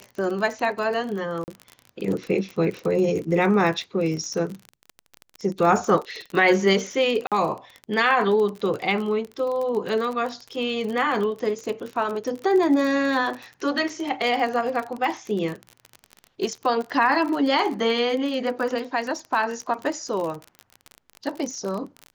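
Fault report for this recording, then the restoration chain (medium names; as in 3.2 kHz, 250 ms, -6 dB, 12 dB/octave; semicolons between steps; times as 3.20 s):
crackle 37 per s -28 dBFS
1.44–1.48 s: dropout 39 ms
7.27–7.32 s: dropout 47 ms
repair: de-click; interpolate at 1.44 s, 39 ms; interpolate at 7.27 s, 47 ms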